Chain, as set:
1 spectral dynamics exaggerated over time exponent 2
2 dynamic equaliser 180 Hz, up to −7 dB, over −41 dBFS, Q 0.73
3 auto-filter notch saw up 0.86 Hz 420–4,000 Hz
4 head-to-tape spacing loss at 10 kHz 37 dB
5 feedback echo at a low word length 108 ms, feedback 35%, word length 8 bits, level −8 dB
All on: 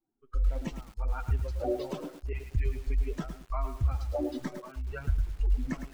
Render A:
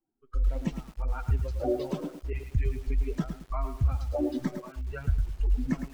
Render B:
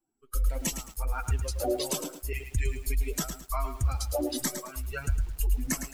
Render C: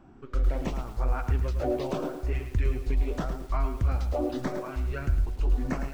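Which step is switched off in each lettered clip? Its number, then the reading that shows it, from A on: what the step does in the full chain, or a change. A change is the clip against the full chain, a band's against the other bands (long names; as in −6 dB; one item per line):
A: 2, change in integrated loudness +2.0 LU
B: 4, 4 kHz band +12.0 dB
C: 1, change in momentary loudness spread −3 LU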